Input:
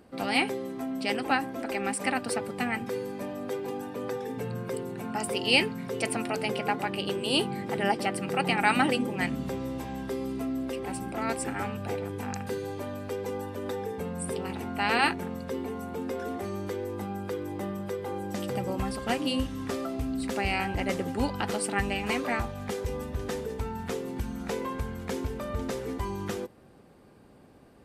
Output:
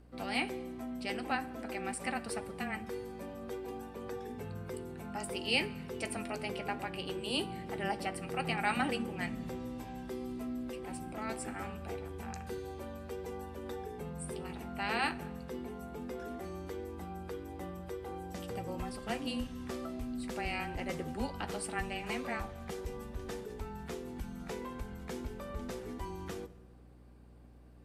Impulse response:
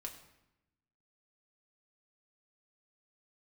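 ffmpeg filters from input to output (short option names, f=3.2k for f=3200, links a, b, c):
-filter_complex "[0:a]afreqshift=-17,aeval=exprs='val(0)+0.00398*(sin(2*PI*60*n/s)+sin(2*PI*2*60*n/s)/2+sin(2*PI*3*60*n/s)/3+sin(2*PI*4*60*n/s)/4+sin(2*PI*5*60*n/s)/5)':c=same,asplit=2[a][b];[1:a]atrim=start_sample=2205,asetrate=27342,aresample=44100,adelay=13[c];[b][c]afir=irnorm=-1:irlink=0,volume=-11.5dB[d];[a][d]amix=inputs=2:normalize=0,volume=-8.5dB"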